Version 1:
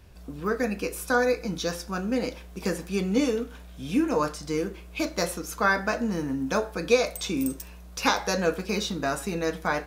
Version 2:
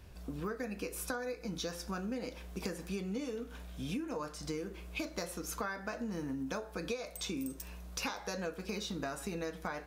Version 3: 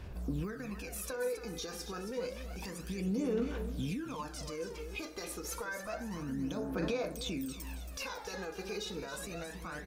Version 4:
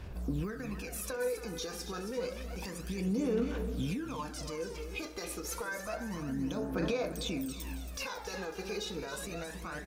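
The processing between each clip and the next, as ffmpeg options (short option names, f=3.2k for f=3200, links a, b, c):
-af "acompressor=threshold=-33dB:ratio=12,volume=-2dB"
-af "alimiter=level_in=9.5dB:limit=-24dB:level=0:latency=1:release=13,volume=-9.5dB,aecho=1:1:275|550|825|1100|1375:0.335|0.147|0.0648|0.0285|0.0126,aphaser=in_gain=1:out_gain=1:delay=2.5:decay=0.63:speed=0.29:type=sinusoidal"
-filter_complex "[0:a]asplit=2[a][b];[b]aeval=exprs='sgn(val(0))*max(abs(val(0))-0.00126,0)':c=same,volume=-8.5dB[c];[a][c]amix=inputs=2:normalize=0,aecho=1:1:350:0.188,volume=-1dB"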